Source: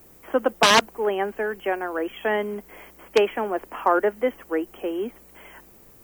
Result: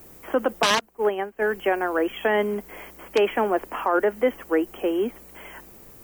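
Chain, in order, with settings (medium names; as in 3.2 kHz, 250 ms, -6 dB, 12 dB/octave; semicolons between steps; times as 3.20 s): peak limiter -15.5 dBFS, peak gain reduction 10.5 dB; 0.75–1.42 s: upward expansion 2.5:1, over -33 dBFS; trim +4 dB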